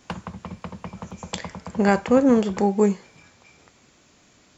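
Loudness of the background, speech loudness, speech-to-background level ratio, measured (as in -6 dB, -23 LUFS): -38.0 LUFS, -20.5 LUFS, 17.5 dB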